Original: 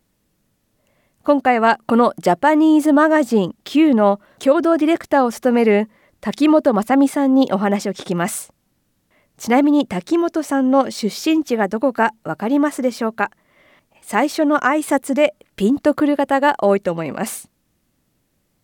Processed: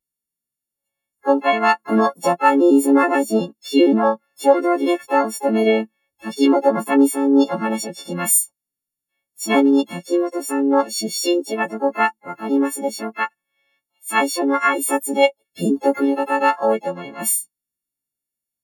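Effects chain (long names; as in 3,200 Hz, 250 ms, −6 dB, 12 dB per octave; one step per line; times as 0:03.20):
every partial snapped to a pitch grid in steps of 4 semitones
pitch-shifted copies added +7 semitones −5 dB
every bin expanded away from the loudest bin 1.5 to 1
level −3.5 dB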